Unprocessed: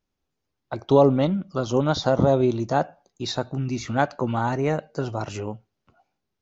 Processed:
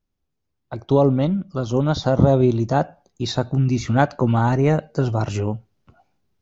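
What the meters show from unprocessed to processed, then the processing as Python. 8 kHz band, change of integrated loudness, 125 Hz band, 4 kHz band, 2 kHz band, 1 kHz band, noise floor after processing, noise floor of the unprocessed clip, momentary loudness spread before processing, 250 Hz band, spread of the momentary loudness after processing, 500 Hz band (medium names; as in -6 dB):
no reading, +3.5 dB, +7.5 dB, +0.5 dB, +2.0 dB, +1.5 dB, -76 dBFS, -81 dBFS, 15 LU, +4.0 dB, 11 LU, +1.0 dB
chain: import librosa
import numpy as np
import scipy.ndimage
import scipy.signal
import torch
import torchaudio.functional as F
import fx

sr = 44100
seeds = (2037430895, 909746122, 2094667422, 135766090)

y = fx.low_shelf(x, sr, hz=210.0, db=9.5)
y = fx.rider(y, sr, range_db=4, speed_s=2.0)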